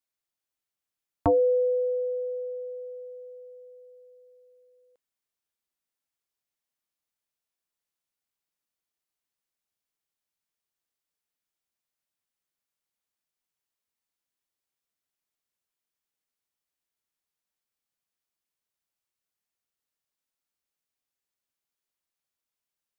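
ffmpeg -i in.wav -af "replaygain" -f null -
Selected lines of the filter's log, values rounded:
track_gain = +17.8 dB
track_peak = 0.113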